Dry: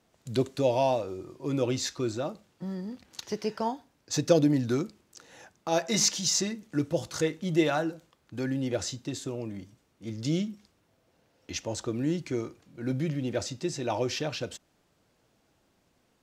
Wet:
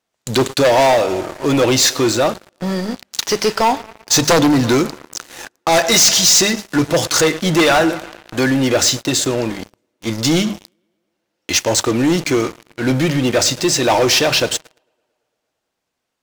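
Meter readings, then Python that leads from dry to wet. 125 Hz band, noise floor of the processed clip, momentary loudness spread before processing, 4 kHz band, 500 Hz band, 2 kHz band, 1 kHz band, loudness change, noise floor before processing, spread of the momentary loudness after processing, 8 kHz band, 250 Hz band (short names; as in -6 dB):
+10.5 dB, -76 dBFS, 14 LU, +18.5 dB, +13.5 dB, +20.0 dB, +16.5 dB, +15.0 dB, -70 dBFS, 12 LU, +17.0 dB, +12.5 dB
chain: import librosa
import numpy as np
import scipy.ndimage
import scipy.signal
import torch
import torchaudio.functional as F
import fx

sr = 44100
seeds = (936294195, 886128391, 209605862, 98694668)

y = np.minimum(x, 2.0 * 10.0 ** (-17.5 / 20.0) - x)
y = fx.low_shelf(y, sr, hz=500.0, db=-11.0)
y = fx.hum_notches(y, sr, base_hz=50, count=4)
y = fx.echo_tape(y, sr, ms=112, feedback_pct=80, wet_db=-20.5, lp_hz=4400.0, drive_db=15.0, wow_cents=18)
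y = fx.leveller(y, sr, passes=5)
y = F.gain(torch.from_numpy(y), 6.0).numpy()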